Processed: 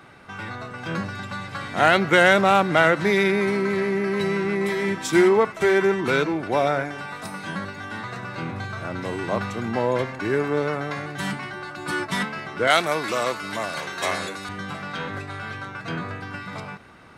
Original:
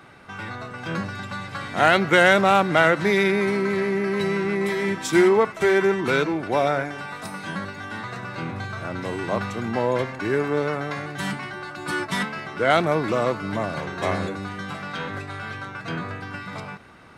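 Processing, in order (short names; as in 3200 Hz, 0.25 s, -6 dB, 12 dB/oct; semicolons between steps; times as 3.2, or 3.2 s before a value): 12.67–14.49 tilt +3.5 dB/oct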